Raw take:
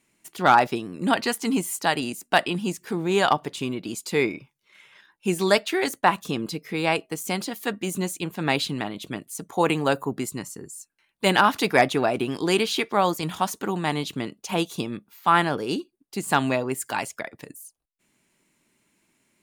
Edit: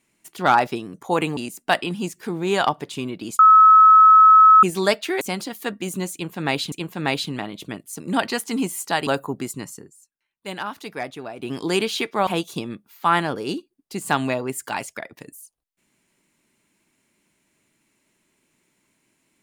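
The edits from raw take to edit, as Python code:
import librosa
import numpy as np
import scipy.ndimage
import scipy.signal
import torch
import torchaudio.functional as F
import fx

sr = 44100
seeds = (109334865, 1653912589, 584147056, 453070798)

y = fx.edit(x, sr, fx.swap(start_s=0.94, length_s=1.07, other_s=9.42, other_length_s=0.43),
    fx.bleep(start_s=4.03, length_s=1.24, hz=1290.0, db=-7.0),
    fx.cut(start_s=5.85, length_s=1.37),
    fx.repeat(start_s=8.14, length_s=0.59, count=2),
    fx.fade_down_up(start_s=10.55, length_s=1.75, db=-12.0, fade_s=0.13),
    fx.cut(start_s=13.05, length_s=1.44), tone=tone)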